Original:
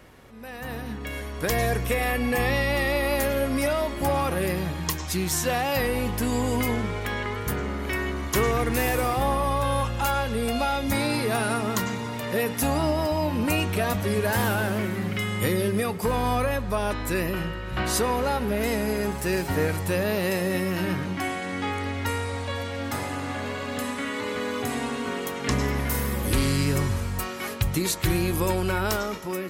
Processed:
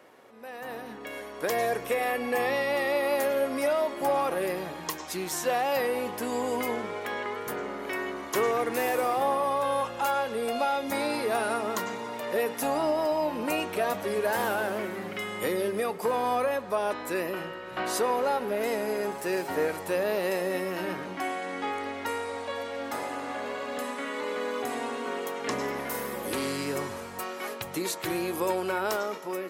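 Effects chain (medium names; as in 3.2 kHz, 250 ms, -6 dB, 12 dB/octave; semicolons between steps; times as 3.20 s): high-pass 530 Hz 12 dB/octave; tilt shelf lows +6.5 dB, about 870 Hz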